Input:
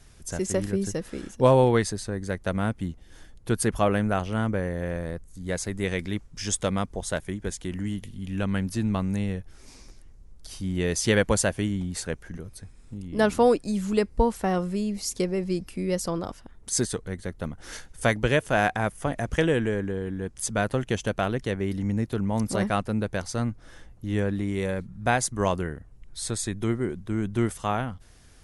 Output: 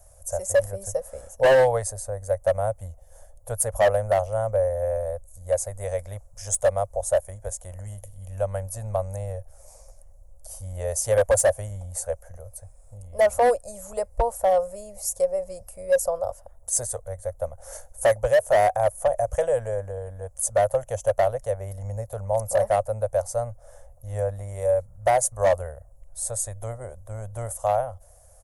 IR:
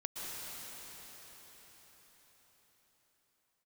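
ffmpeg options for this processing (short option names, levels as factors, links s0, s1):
-af "firequalizer=gain_entry='entry(100,0);entry(160,-20);entry(340,-28);entry(550,14);entry(940,-1);entry(1500,-10);entry(2700,-17);entry(3900,-17);entry(6800,2);entry(13000,12)':delay=0.05:min_phase=1,asoftclip=type=hard:threshold=0.211"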